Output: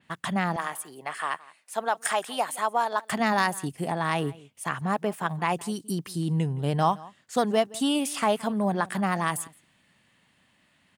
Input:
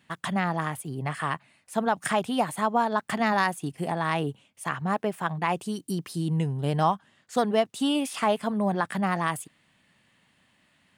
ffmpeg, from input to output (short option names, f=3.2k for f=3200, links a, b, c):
-filter_complex "[0:a]asettb=1/sr,asplit=3[a][b][c];[a]atrim=end=0.564[d];[b]atrim=start=0.56:end=3.11,asetpts=PTS-STARTPTS,afade=t=in:d=0.004:c=qsin,afade=t=out:st=2.546:d=0.004:c=qsin,highpass=520[e];[c]atrim=start=3.106[f];[d][e]acrossfade=d=0.004:c1=hsin:c2=qsin[g];[g][f]acrossfade=d=0.004:c1=qsin:c2=hsin,asplit=2[h][i];[i]adelay=169.1,volume=-21dB,highshelf=f=4k:g=-3.8[j];[h][j]amix=inputs=2:normalize=0,adynamicequalizer=threshold=0.0126:dfrequency=4600:dqfactor=0.7:tfrequency=4600:tqfactor=0.7:attack=5:release=100:ratio=0.375:range=3:mode=boostabove:tftype=highshelf"